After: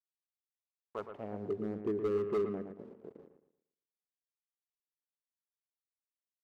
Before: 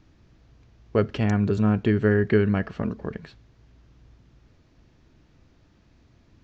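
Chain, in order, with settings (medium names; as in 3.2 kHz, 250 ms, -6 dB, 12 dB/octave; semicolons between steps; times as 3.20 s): local Wiener filter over 41 samples; 1.09–1.59 s: Chebyshev low-pass 4 kHz, order 10; 2.72–3.19 s: compression 4:1, threshold -34 dBFS, peak gain reduction 10 dB; bit crusher 7-bit; band-pass sweep 2.3 kHz -> 410 Hz, 0.51–1.46 s; hard clipper -21.5 dBFS, distortion -12 dB; on a send: bucket-brigade echo 115 ms, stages 2048, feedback 33%, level -8 dB; on the sum: trim -6.5 dB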